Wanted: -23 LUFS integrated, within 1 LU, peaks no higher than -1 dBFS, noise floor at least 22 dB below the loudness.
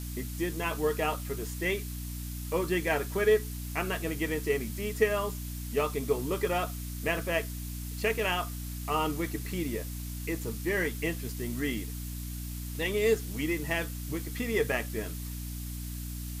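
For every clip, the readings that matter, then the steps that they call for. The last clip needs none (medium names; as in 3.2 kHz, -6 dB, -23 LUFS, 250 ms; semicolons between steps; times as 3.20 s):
hum 60 Hz; highest harmonic 300 Hz; hum level -35 dBFS; noise floor -38 dBFS; noise floor target -54 dBFS; loudness -32.0 LUFS; peak level -11.5 dBFS; loudness target -23.0 LUFS
-> hum notches 60/120/180/240/300 Hz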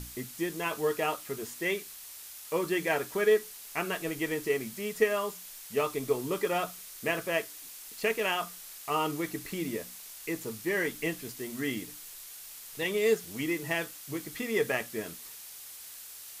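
hum not found; noise floor -47 dBFS; noise floor target -54 dBFS
-> noise reduction 7 dB, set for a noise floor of -47 dBFS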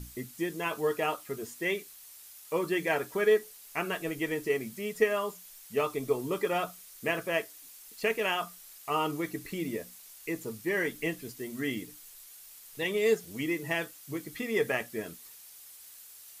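noise floor -51 dBFS; noise floor target -54 dBFS
-> noise reduction 6 dB, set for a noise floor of -51 dBFS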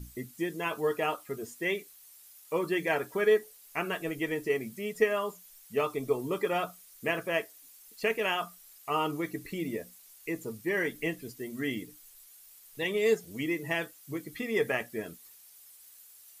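noise floor -55 dBFS; loudness -32.0 LUFS; peak level -12.0 dBFS; loudness target -23.0 LUFS
-> trim +9 dB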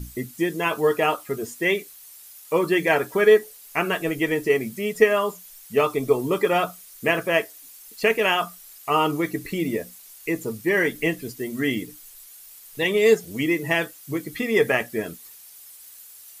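loudness -23.0 LUFS; peak level -3.0 dBFS; noise floor -46 dBFS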